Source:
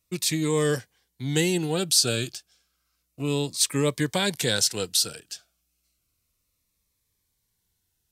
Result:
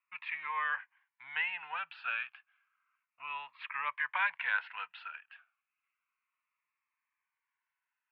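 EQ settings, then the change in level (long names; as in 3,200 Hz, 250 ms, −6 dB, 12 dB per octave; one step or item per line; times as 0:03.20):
elliptic band-pass filter 960–2,600 Hz, stop band 50 dB
high-frequency loss of the air 370 metres
+4.5 dB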